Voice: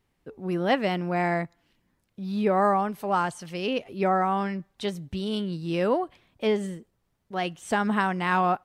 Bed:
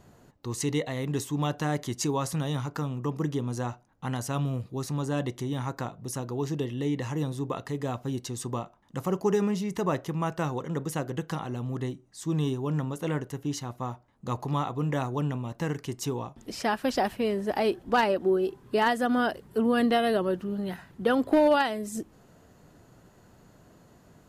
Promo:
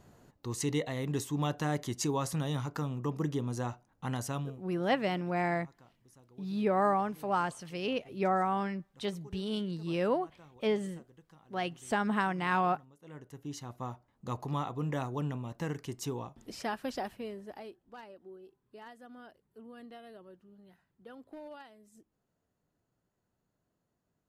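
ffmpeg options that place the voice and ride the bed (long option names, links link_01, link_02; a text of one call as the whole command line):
ffmpeg -i stem1.wav -i stem2.wav -filter_complex "[0:a]adelay=4200,volume=-5.5dB[link_01];[1:a]volume=18dB,afade=type=out:start_time=4.26:duration=0.35:silence=0.0668344,afade=type=in:start_time=13.01:duration=0.85:silence=0.0841395,afade=type=out:start_time=16.26:duration=1.52:silence=0.0944061[link_02];[link_01][link_02]amix=inputs=2:normalize=0" out.wav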